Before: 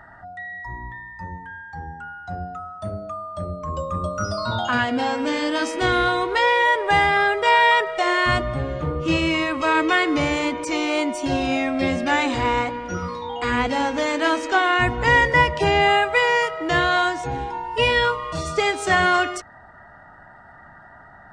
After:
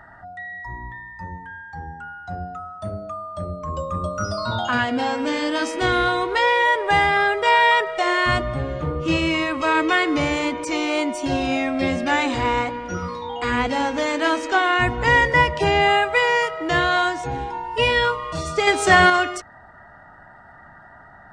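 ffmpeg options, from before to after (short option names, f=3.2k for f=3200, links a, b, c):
-filter_complex "[0:a]asettb=1/sr,asplit=3[a][b][c];[a]atrim=end=18.674[d];[b]atrim=start=18.67:end=19.1,asetpts=PTS-STARTPTS,afade=t=in:d=0.004:c=qsin,afade=t=out:st=0.426:d=0.004:c=qsin,acontrast=45[e];[c]atrim=start=19.096[f];[d][e]acrossfade=d=0.004:c1=hsin:c2=qsin[g];[g][f]acrossfade=d=0.004:c1=qsin:c2=hsin"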